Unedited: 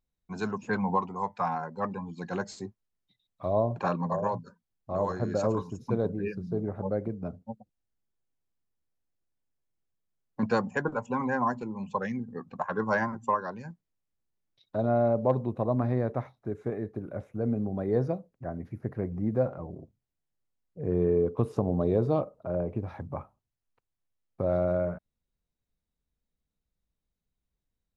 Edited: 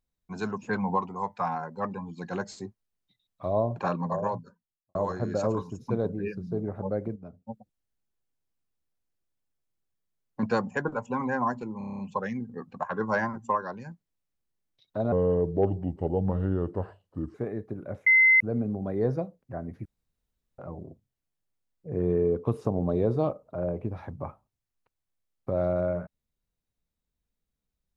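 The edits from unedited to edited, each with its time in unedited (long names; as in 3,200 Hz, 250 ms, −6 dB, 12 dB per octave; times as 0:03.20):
0:04.27–0:04.95: fade out and dull
0:07.16–0:07.47: clip gain −9 dB
0:11.78: stutter 0.03 s, 8 plays
0:14.91–0:16.60: play speed 76%
0:17.32: insert tone 2,060 Hz −15 dBFS 0.34 s
0:18.77–0:19.50: fill with room tone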